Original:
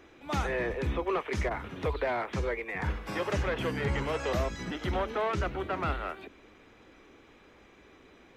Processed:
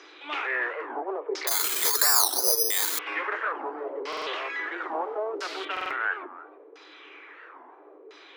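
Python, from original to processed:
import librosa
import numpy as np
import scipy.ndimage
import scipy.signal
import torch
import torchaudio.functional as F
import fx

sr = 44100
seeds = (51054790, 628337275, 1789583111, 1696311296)

p1 = np.minimum(x, 2.0 * 10.0 ** (-28.0 / 20.0) - x)
p2 = fx.tilt_eq(p1, sr, slope=2.0)
p3 = fx.over_compress(p2, sr, threshold_db=-42.0, ratio=-1.0)
p4 = p2 + (p3 * librosa.db_to_amplitude(-2.0))
p5 = fx.quant_dither(p4, sr, seeds[0], bits=6, dither='triangular', at=(4.82, 5.65))
p6 = fx.filter_lfo_lowpass(p5, sr, shape='saw_down', hz=0.74, low_hz=440.0, high_hz=5300.0, q=3.6)
p7 = scipy.signal.sosfilt(scipy.signal.cheby1(6, 6, 290.0, 'highpass', fs=sr, output='sos'), p6)
p8 = p7 + fx.echo_single(p7, sr, ms=302, db=-18.0, dry=0)
p9 = fx.resample_bad(p8, sr, factor=8, down='filtered', up='zero_stuff', at=(1.47, 2.99))
p10 = fx.buffer_glitch(p9, sr, at_s=(4.08, 5.72), block=2048, repeats=3)
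y = fx.record_warp(p10, sr, rpm=45.0, depth_cents=250.0)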